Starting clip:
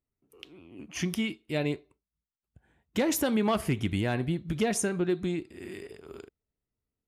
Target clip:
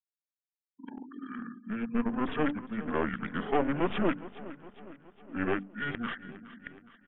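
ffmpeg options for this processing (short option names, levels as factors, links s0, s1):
-af "areverse,highpass=f=340:w=0.5412,highpass=f=340:w=1.3066,bandreject=f=50:t=h:w=6,bandreject=f=100:t=h:w=6,bandreject=f=150:t=h:w=6,bandreject=f=200:t=h:w=6,bandreject=f=250:t=h:w=6,bandreject=f=300:t=h:w=6,bandreject=f=350:t=h:w=6,bandreject=f=400:t=h:w=6,bandreject=f=450:t=h:w=6,afftfilt=real='re*gte(hypot(re,im),0.00398)':imag='im*gte(hypot(re,im),0.00398)':win_size=1024:overlap=0.75,equalizer=f=3300:w=7:g=-7.5,aeval=exprs='clip(val(0),-1,0.0119)':c=same,aresample=11025,aresample=44100,aecho=1:1:413|826|1239|1652|2065:0.15|0.0823|0.0453|0.0249|0.0137,asetrate=28595,aresample=44100,atempo=1.54221,volume=1.78"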